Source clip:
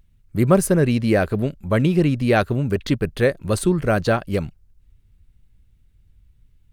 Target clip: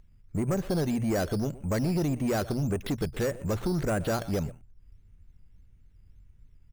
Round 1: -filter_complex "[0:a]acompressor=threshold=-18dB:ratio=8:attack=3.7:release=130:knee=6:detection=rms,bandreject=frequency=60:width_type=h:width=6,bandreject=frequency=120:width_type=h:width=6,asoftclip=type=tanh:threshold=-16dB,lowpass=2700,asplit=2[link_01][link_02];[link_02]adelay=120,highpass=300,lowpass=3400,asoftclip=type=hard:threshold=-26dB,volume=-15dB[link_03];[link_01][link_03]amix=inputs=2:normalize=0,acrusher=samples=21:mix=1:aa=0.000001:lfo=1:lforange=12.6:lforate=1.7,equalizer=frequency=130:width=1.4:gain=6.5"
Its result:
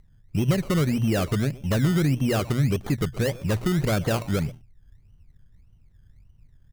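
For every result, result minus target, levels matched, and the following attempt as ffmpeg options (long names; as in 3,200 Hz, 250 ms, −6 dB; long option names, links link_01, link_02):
sample-and-hold swept by an LFO: distortion +10 dB; soft clipping: distortion −8 dB; 125 Hz band +2.5 dB
-filter_complex "[0:a]acompressor=threshold=-18dB:ratio=8:attack=3.7:release=130:knee=6:detection=rms,bandreject=frequency=60:width_type=h:width=6,bandreject=frequency=120:width_type=h:width=6,asoftclip=type=tanh:threshold=-16dB,lowpass=2700,asplit=2[link_01][link_02];[link_02]adelay=120,highpass=300,lowpass=3400,asoftclip=type=hard:threshold=-26dB,volume=-15dB[link_03];[link_01][link_03]amix=inputs=2:normalize=0,acrusher=samples=7:mix=1:aa=0.000001:lfo=1:lforange=4.2:lforate=1.7,equalizer=frequency=130:width=1.4:gain=6.5"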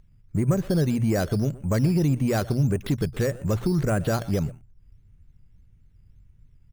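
soft clipping: distortion −8 dB; 125 Hz band +2.5 dB
-filter_complex "[0:a]acompressor=threshold=-18dB:ratio=8:attack=3.7:release=130:knee=6:detection=rms,bandreject=frequency=60:width_type=h:width=6,bandreject=frequency=120:width_type=h:width=6,asoftclip=type=tanh:threshold=-22.5dB,lowpass=2700,asplit=2[link_01][link_02];[link_02]adelay=120,highpass=300,lowpass=3400,asoftclip=type=hard:threshold=-26dB,volume=-15dB[link_03];[link_01][link_03]amix=inputs=2:normalize=0,acrusher=samples=7:mix=1:aa=0.000001:lfo=1:lforange=4.2:lforate=1.7,equalizer=frequency=130:width=1.4:gain=6.5"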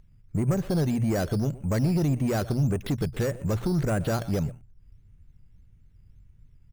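125 Hz band +2.5 dB
-filter_complex "[0:a]acompressor=threshold=-18dB:ratio=8:attack=3.7:release=130:knee=6:detection=rms,bandreject=frequency=60:width_type=h:width=6,bandreject=frequency=120:width_type=h:width=6,asoftclip=type=tanh:threshold=-22.5dB,lowpass=2700,asplit=2[link_01][link_02];[link_02]adelay=120,highpass=300,lowpass=3400,asoftclip=type=hard:threshold=-26dB,volume=-15dB[link_03];[link_01][link_03]amix=inputs=2:normalize=0,acrusher=samples=7:mix=1:aa=0.000001:lfo=1:lforange=4.2:lforate=1.7"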